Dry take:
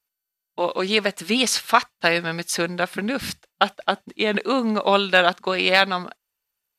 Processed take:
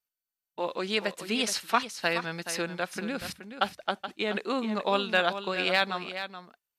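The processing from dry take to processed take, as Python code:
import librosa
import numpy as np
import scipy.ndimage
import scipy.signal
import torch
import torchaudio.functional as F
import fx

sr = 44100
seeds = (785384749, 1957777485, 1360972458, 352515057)

p1 = x + fx.echo_single(x, sr, ms=425, db=-10.5, dry=0)
y = p1 * 10.0 ** (-8.5 / 20.0)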